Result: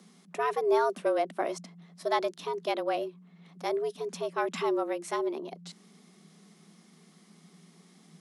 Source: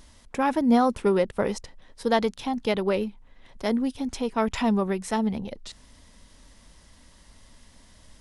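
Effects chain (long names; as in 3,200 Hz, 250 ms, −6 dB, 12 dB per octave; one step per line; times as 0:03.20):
frequency shifter +160 Hz
level −5.5 dB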